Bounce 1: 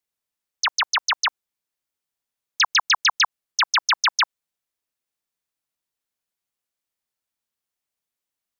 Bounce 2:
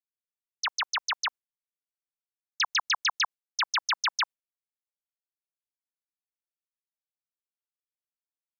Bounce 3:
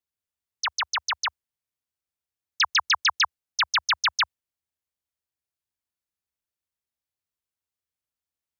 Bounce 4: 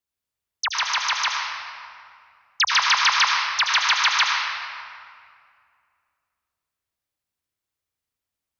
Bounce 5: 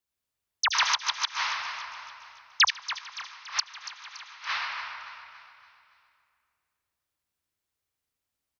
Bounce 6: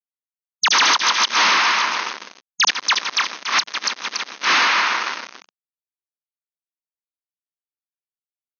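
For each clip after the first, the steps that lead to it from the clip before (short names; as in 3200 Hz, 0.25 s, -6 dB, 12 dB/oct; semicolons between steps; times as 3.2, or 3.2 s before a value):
gate with hold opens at -22 dBFS; gain -8 dB
bell 76 Hz +13.5 dB 1.2 oct; in parallel at -3 dB: level quantiser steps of 13 dB; on the sum: gain +1 dB
reverb RT60 2.3 s, pre-delay 70 ms, DRR -1 dB; gain +2 dB
flipped gate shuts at -13 dBFS, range -26 dB; feedback echo 0.284 s, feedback 49%, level -13 dB
fuzz box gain 38 dB, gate -44 dBFS; brick-wall FIR band-pass 180–6600 Hz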